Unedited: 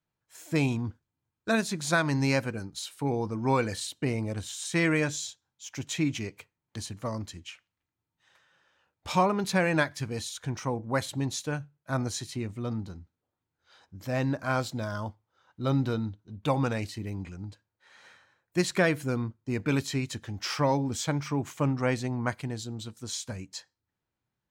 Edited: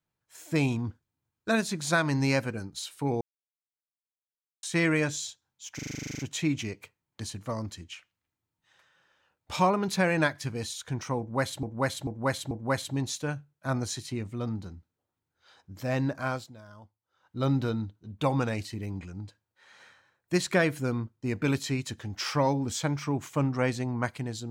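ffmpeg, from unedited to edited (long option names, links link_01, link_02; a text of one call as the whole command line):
ffmpeg -i in.wav -filter_complex "[0:a]asplit=19[link_01][link_02][link_03][link_04][link_05][link_06][link_07][link_08][link_09][link_10][link_11][link_12][link_13][link_14][link_15][link_16][link_17][link_18][link_19];[link_01]atrim=end=3.21,asetpts=PTS-STARTPTS,afade=type=out:start_time=3.206:duration=0.004:curve=hsin[link_20];[link_02]atrim=start=3.21:end=4.63,asetpts=PTS-STARTPTS,volume=0[link_21];[link_03]atrim=start=4.63:end=5.792,asetpts=PTS-STARTPTS,afade=type=in:duration=0.004:curve=hsin[link_22];[link_04]atrim=start=5.748:end=5.792[link_23];[link_05]atrim=start=5.748:end=5.792[link_24];[link_06]atrim=start=5.748:end=5.792[link_25];[link_07]atrim=start=5.748:end=5.792[link_26];[link_08]atrim=start=5.748:end=5.792[link_27];[link_09]atrim=start=5.748:end=5.792[link_28];[link_10]atrim=start=5.748:end=5.792[link_29];[link_11]atrim=start=5.748:end=5.792[link_30];[link_12]atrim=start=5.748:end=5.792[link_31];[link_13]atrim=start=5.748:end=5.792[link_32];[link_14]atrim=start=5.748:end=11.192[link_33];[link_15]atrim=start=10.748:end=11.192[link_34];[link_16]atrim=start=10.748:end=11.192[link_35];[link_17]atrim=start=10.748:end=14.77,asetpts=PTS-STARTPTS,afade=type=out:start_time=3.652:duration=0.37:silence=0.158489[link_36];[link_18]atrim=start=14.77:end=15.24,asetpts=PTS-STARTPTS,volume=-16dB[link_37];[link_19]atrim=start=15.24,asetpts=PTS-STARTPTS,afade=type=in:duration=0.37:silence=0.158489[link_38];[link_20][link_21][link_22]concat=n=3:v=0:a=1[link_39];[link_39][link_23]acrossfade=duration=0.004:curve1=hsin:curve2=hsin[link_40];[link_40][link_24]acrossfade=duration=0.004:curve1=hsin:curve2=hsin[link_41];[link_41][link_25]acrossfade=duration=0.004:curve1=hsin:curve2=hsin[link_42];[link_42][link_26]acrossfade=duration=0.004:curve1=hsin:curve2=hsin[link_43];[link_43][link_27]acrossfade=duration=0.004:curve1=hsin:curve2=hsin[link_44];[link_44][link_28]acrossfade=duration=0.004:curve1=hsin:curve2=hsin[link_45];[link_45][link_29]acrossfade=duration=0.004:curve1=hsin:curve2=hsin[link_46];[link_46][link_30]acrossfade=duration=0.004:curve1=hsin:curve2=hsin[link_47];[link_47][link_31]acrossfade=duration=0.004:curve1=hsin:curve2=hsin[link_48];[link_48][link_32]acrossfade=duration=0.004:curve1=hsin:curve2=hsin[link_49];[link_49][link_33]acrossfade=duration=0.004:curve1=hsin:curve2=hsin[link_50];[link_50][link_34]acrossfade=duration=0.004:curve1=hsin:curve2=hsin[link_51];[link_51][link_35]acrossfade=duration=0.004:curve1=hsin:curve2=hsin[link_52];[link_36][link_37][link_38]concat=n=3:v=0:a=1[link_53];[link_52][link_53]acrossfade=duration=0.004:curve1=hsin:curve2=hsin" out.wav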